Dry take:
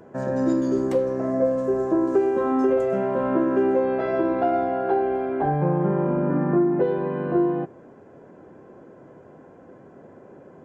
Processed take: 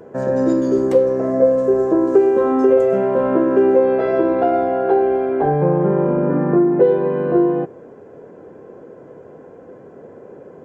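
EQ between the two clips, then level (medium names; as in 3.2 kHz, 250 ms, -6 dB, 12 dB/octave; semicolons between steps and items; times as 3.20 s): peaking EQ 460 Hz +9 dB 0.42 oct; +3.5 dB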